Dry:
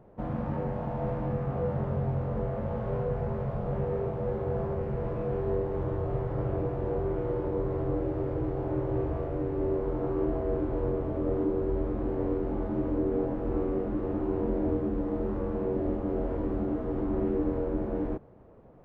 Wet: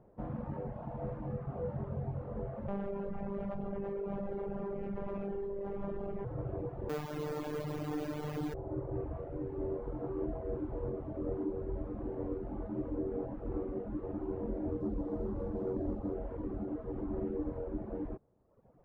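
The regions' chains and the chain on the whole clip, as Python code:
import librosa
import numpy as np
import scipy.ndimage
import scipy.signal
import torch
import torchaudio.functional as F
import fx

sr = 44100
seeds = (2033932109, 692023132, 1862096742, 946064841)

y = fx.chain(x, sr, fx.peak_eq(hz=2700.0, db=5.0, octaves=0.98),
    fx.robotise(hz=199.0),
    fx.env_flatten(amount_pct=100), at=(2.68, 6.25))
y = fx.chain(y, sr, fx.highpass(hz=74.0, slope=12),
    fx.quant_companded(bits=2),
    fx.robotise(hz=150.0), at=(6.89, 8.54))
y = fx.chain(y, sr, fx.lowpass(hz=1000.0, slope=6),
    fx.leveller(passes=1), at=(14.8, 16.14))
y = fx.dereverb_blind(y, sr, rt60_s=1.1)
y = fx.high_shelf(y, sr, hz=2600.0, db=-10.5)
y = F.gain(torch.from_numpy(y), -5.5).numpy()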